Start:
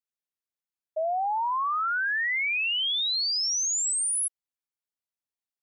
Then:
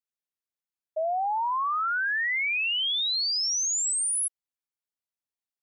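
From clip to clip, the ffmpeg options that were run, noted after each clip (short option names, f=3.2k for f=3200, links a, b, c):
-af anull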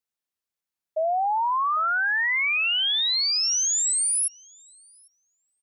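-filter_complex "[0:a]asplit=2[a][b];[b]adelay=799,lowpass=f=2.6k:p=1,volume=-19dB,asplit=2[c][d];[d]adelay=799,lowpass=f=2.6k:p=1,volume=0.22[e];[a][c][e]amix=inputs=3:normalize=0,volume=3.5dB"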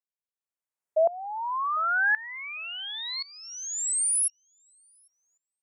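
-af "equalizer=f=500:t=o:w=1:g=8,equalizer=f=1k:t=o:w=1:g=7,equalizer=f=2k:t=o:w=1:g=5,equalizer=f=4k:t=o:w=1:g=-8,equalizer=f=8k:t=o:w=1:g=8,aeval=exprs='val(0)*pow(10,-20*if(lt(mod(-0.93*n/s,1),2*abs(-0.93)/1000),1-mod(-0.93*n/s,1)/(2*abs(-0.93)/1000),(mod(-0.93*n/s,1)-2*abs(-0.93)/1000)/(1-2*abs(-0.93)/1000))/20)':c=same,volume=-3.5dB"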